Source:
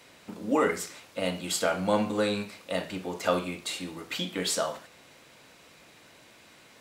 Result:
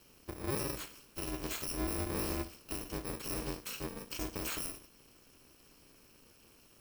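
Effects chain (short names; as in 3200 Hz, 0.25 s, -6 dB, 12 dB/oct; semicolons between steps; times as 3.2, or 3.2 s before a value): FFT order left unsorted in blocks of 64 samples; high shelf 3100 Hz -9 dB; limiter -27 dBFS, peak gain reduction 9 dB; ring modulator 130 Hz; gain +2 dB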